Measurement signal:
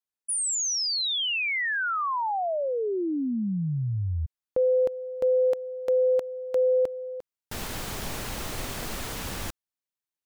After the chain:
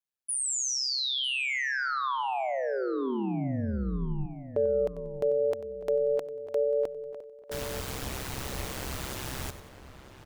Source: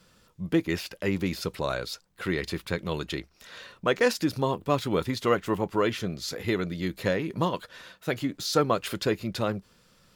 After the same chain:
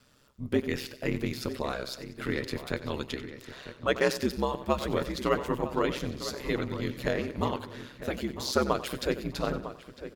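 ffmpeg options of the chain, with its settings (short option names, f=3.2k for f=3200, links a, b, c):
-filter_complex "[0:a]asplit=2[a][b];[b]aecho=0:1:93|186|279|372:0.2|0.0918|0.0422|0.0194[c];[a][c]amix=inputs=2:normalize=0,aeval=exprs='val(0)*sin(2*PI*66*n/s)':c=same,asplit=2[d][e];[e]adelay=952,lowpass=f=2.4k:p=1,volume=-12dB,asplit=2[f][g];[g]adelay=952,lowpass=f=2.4k:p=1,volume=0.31,asplit=2[h][i];[i]adelay=952,lowpass=f=2.4k:p=1,volume=0.31[j];[f][h][j]amix=inputs=3:normalize=0[k];[d][k]amix=inputs=2:normalize=0"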